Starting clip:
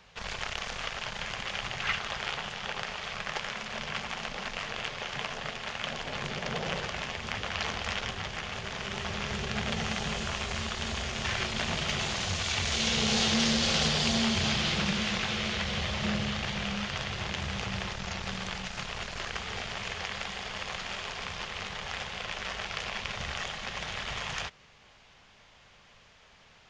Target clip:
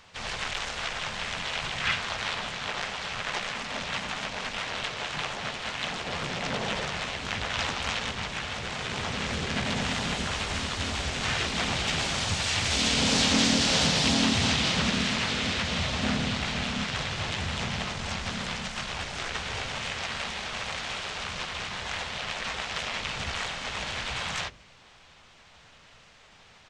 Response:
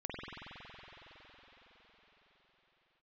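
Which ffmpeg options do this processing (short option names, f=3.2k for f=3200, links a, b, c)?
-filter_complex "[0:a]bandreject=f=49.23:t=h:w=4,bandreject=f=98.46:t=h:w=4,bandreject=f=147.69:t=h:w=4,bandreject=f=196.92:t=h:w=4,bandreject=f=246.15:t=h:w=4,bandreject=f=295.38:t=h:w=4,bandreject=f=344.61:t=h:w=4,bandreject=f=393.84:t=h:w=4,bandreject=f=443.07:t=h:w=4,bandreject=f=492.3:t=h:w=4,bandreject=f=541.53:t=h:w=4,bandreject=f=590.76:t=h:w=4,asplit=4[a][b][c][d];[b]asetrate=37084,aresample=44100,atempo=1.18921,volume=-5dB[e];[c]asetrate=52444,aresample=44100,atempo=0.840896,volume=-1dB[f];[d]asetrate=58866,aresample=44100,atempo=0.749154,volume=-10dB[g];[a][e][f][g]amix=inputs=4:normalize=0"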